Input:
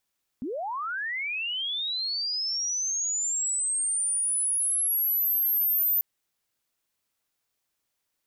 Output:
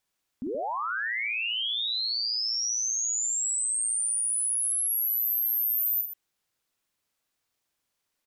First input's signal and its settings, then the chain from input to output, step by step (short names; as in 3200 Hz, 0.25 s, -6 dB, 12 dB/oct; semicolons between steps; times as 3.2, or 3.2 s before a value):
chirp linear 220 Hz -> 14000 Hz -29.5 dBFS -> -21 dBFS 5.59 s
high shelf 9600 Hz -4.5 dB; on a send: loudspeakers at several distances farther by 16 m -6 dB, 43 m -11 dB